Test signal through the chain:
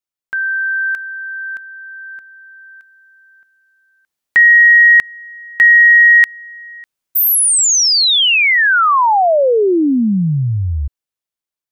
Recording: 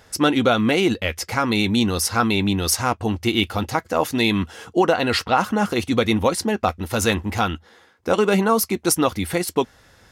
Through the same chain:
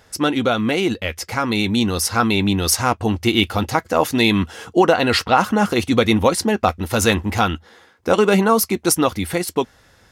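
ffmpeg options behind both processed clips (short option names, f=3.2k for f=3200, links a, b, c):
-af "dynaudnorm=f=590:g=7:m=12dB,volume=-1dB"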